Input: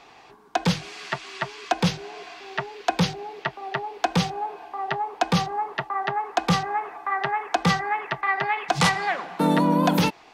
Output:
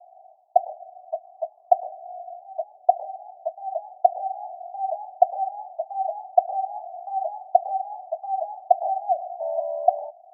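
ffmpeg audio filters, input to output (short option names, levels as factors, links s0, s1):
-af "asuperpass=centerf=680:order=8:qfactor=4.1,volume=2.51"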